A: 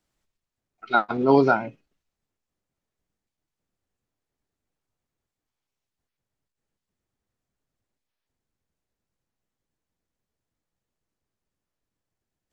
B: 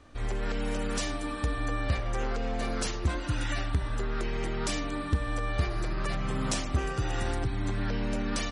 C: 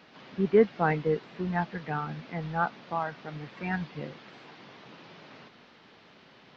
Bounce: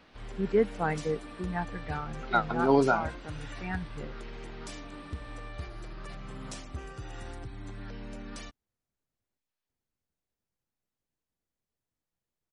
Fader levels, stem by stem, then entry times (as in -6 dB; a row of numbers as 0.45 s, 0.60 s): -5.5 dB, -11.5 dB, -4.0 dB; 1.40 s, 0.00 s, 0.00 s